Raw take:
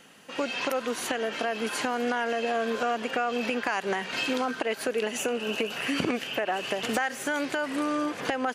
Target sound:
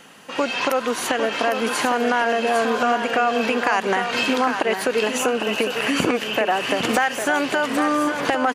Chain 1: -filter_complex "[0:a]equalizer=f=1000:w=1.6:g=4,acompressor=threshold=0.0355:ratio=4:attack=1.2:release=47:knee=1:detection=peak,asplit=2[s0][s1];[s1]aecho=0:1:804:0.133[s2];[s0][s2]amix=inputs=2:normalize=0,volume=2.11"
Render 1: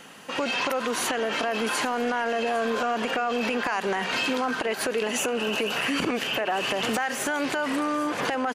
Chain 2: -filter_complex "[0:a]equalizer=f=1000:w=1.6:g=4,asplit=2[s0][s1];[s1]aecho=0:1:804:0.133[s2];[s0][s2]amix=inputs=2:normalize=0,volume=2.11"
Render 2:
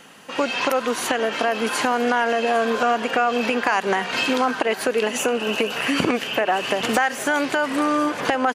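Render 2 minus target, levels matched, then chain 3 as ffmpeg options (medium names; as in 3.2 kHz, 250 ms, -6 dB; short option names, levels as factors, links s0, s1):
echo-to-direct -10 dB
-filter_complex "[0:a]equalizer=f=1000:w=1.6:g=4,asplit=2[s0][s1];[s1]aecho=0:1:804:0.422[s2];[s0][s2]amix=inputs=2:normalize=0,volume=2.11"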